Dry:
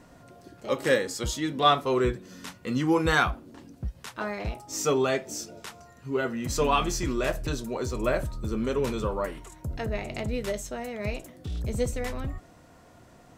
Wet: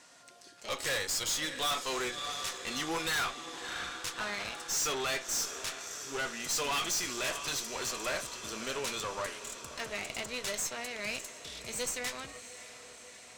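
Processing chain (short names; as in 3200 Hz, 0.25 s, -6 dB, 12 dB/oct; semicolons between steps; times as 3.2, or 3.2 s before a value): weighting filter ITU-R 468; diffused feedback echo 0.634 s, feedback 69%, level -14.5 dB; tube stage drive 29 dB, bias 0.7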